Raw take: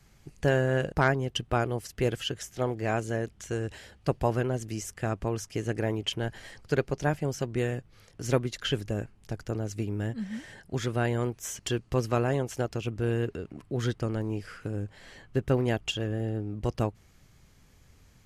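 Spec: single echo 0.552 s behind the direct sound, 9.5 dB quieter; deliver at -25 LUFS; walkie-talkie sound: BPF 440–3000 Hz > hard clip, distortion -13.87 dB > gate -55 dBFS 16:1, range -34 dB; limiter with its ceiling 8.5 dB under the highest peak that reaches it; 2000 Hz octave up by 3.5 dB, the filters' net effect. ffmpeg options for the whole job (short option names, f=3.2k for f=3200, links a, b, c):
-af "equalizer=f=2k:t=o:g=5.5,alimiter=limit=-18dB:level=0:latency=1,highpass=440,lowpass=3k,aecho=1:1:552:0.335,asoftclip=type=hard:threshold=-25dB,agate=range=-34dB:threshold=-55dB:ratio=16,volume=11.5dB"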